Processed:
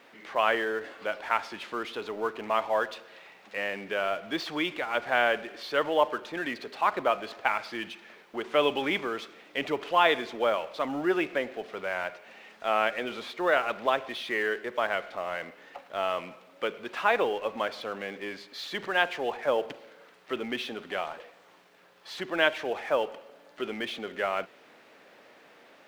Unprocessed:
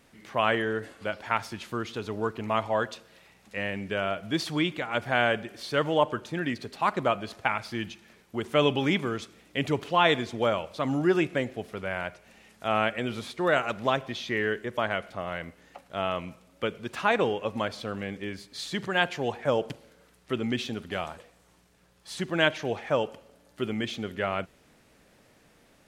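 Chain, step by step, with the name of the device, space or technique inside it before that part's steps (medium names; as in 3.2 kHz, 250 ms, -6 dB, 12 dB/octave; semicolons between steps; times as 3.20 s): phone line with mismatched companding (band-pass 400–3500 Hz; companding laws mixed up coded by mu)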